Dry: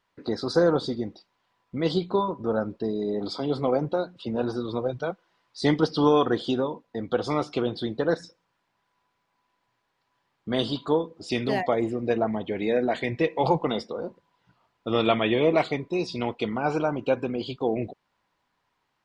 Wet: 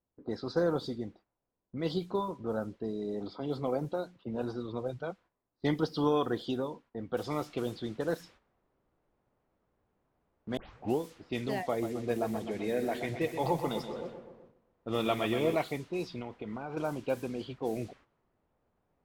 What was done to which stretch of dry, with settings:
7.17 noise floor step -58 dB -46 dB
10.57 tape start 0.43 s
11.7–15.55 feedback echo 0.127 s, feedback 59%, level -9 dB
16.18–16.77 compressor 20:1, threshold -26 dBFS
whole clip: low-pass opened by the level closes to 530 Hz, open at -21 dBFS; gate -49 dBFS, range -9 dB; low shelf 120 Hz +5 dB; gain -8.5 dB

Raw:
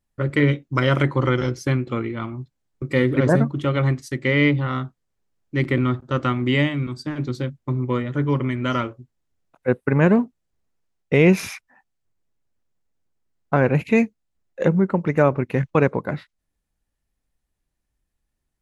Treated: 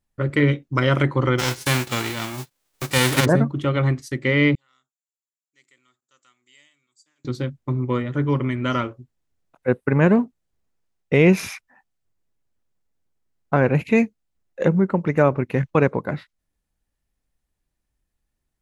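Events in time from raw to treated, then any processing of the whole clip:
1.38–3.24 spectral whitening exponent 0.3
4.55–7.25 band-pass 7200 Hz, Q 10

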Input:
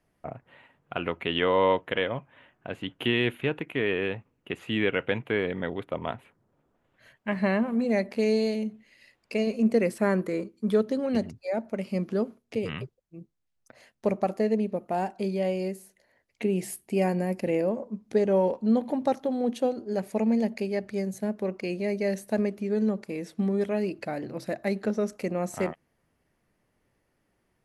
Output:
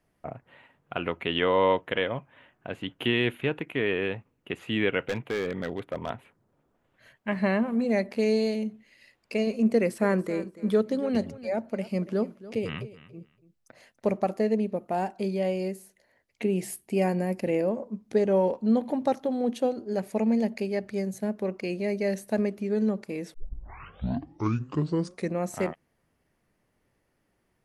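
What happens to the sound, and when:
5.08–6.1 hard clip -24 dBFS
9.71–14.28 feedback echo 0.284 s, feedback 18%, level -17 dB
23.34 tape start 2.06 s

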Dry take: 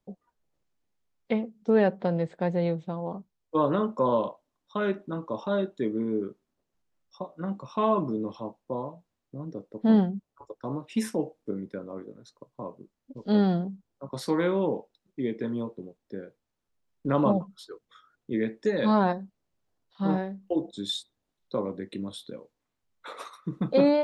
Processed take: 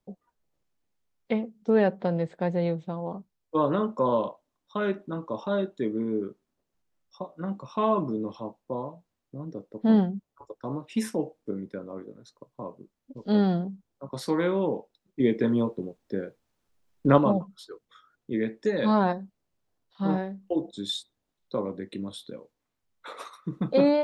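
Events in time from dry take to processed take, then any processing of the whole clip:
15.2–17.18 gain +7 dB

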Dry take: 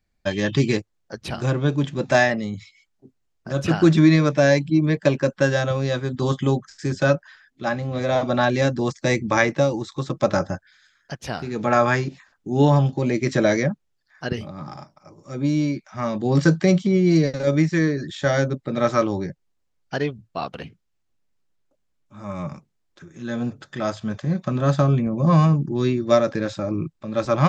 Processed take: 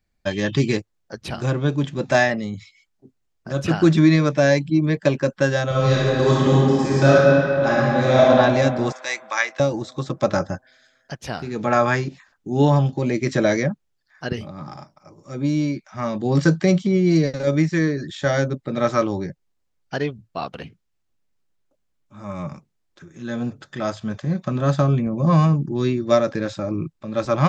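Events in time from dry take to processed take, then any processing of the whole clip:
5.68–8.26 reverb throw, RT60 2.8 s, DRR -7 dB
8.92–9.6 HPF 1100 Hz

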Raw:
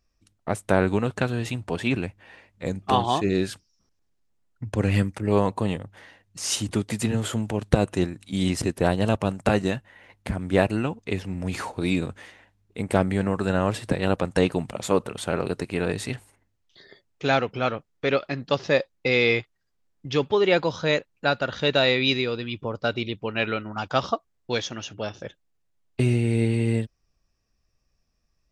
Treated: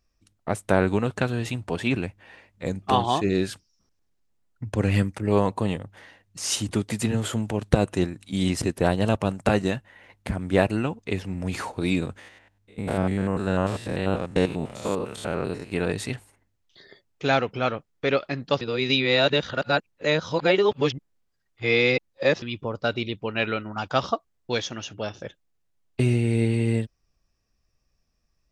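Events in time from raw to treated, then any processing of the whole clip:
12.19–15.72 stepped spectrum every 0.1 s
18.61–22.42 reverse

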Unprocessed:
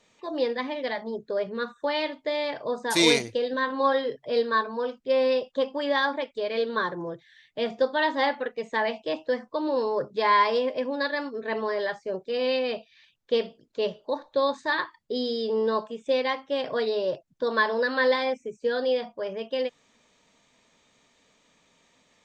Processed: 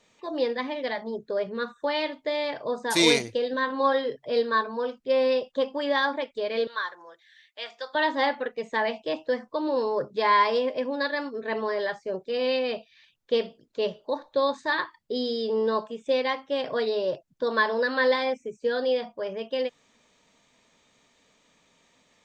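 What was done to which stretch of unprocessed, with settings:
6.67–7.95 HPF 1200 Hz

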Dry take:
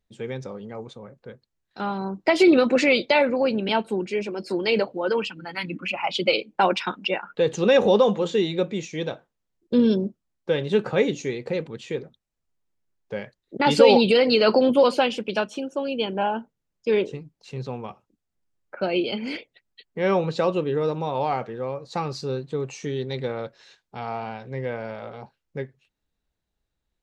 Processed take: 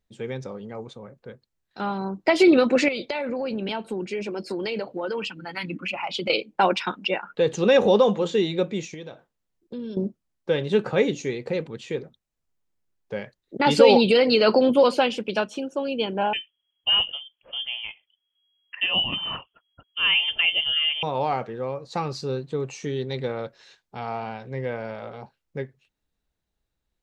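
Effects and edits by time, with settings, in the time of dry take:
2.88–6.3 compressor 10:1, threshold -24 dBFS
8.94–9.97 compressor 2.5:1, threshold -39 dBFS
16.33–21.03 inverted band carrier 3300 Hz

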